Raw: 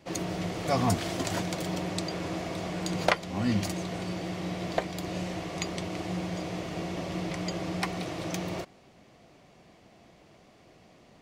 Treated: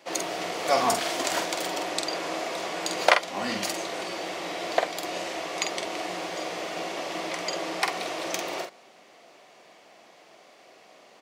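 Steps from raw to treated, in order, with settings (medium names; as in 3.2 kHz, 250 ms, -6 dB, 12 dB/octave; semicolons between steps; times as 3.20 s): high-pass 500 Hz 12 dB/octave; doubling 47 ms -6 dB; trim +6 dB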